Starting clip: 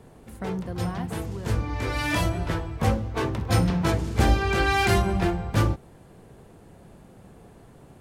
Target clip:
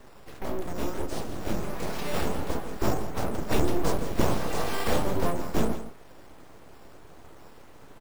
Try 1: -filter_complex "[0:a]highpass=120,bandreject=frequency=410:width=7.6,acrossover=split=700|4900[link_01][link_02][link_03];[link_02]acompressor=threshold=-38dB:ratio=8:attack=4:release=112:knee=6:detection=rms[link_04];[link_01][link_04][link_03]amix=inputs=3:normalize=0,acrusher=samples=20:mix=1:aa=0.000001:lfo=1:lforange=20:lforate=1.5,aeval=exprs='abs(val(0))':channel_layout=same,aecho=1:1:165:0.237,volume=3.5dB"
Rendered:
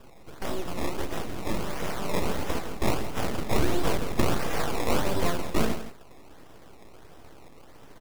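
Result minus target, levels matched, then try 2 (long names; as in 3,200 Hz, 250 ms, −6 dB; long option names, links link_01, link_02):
downward compressor: peak gain reduction −7 dB; sample-and-hold swept by an LFO: distortion +10 dB
-filter_complex "[0:a]highpass=120,bandreject=frequency=410:width=7.6,acrossover=split=700|4900[link_01][link_02][link_03];[link_02]acompressor=threshold=-46dB:ratio=8:attack=4:release=112:knee=6:detection=rms[link_04];[link_01][link_04][link_03]amix=inputs=3:normalize=0,acrusher=samples=5:mix=1:aa=0.000001:lfo=1:lforange=5:lforate=1.5,aeval=exprs='abs(val(0))':channel_layout=same,aecho=1:1:165:0.237,volume=3.5dB"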